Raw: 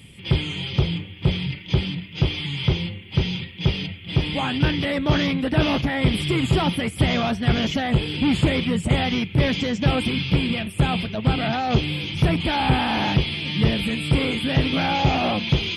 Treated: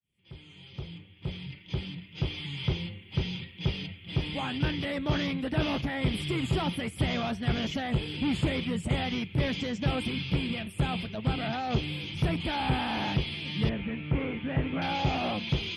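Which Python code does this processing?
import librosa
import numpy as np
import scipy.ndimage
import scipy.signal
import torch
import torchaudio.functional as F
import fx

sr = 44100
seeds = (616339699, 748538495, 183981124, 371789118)

y = fx.fade_in_head(x, sr, length_s=2.66)
y = fx.lowpass(y, sr, hz=2300.0, slope=24, at=(13.69, 14.82))
y = y * 10.0 ** (-8.5 / 20.0)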